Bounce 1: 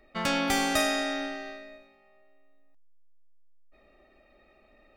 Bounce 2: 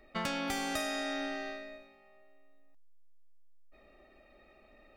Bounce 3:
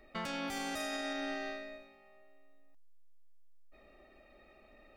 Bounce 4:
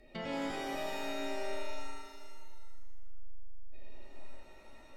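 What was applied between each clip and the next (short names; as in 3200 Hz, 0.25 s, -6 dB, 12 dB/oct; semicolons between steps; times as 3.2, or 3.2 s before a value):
compressor 6:1, threshold -32 dBFS, peak gain reduction 10 dB
limiter -29.5 dBFS, peak gain reduction 9 dB
treble ducked by the level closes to 2100 Hz, closed at -37 dBFS; bell 1200 Hz -13.5 dB 0.89 oct; shimmer reverb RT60 1.5 s, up +7 st, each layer -2 dB, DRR 0 dB; gain +1.5 dB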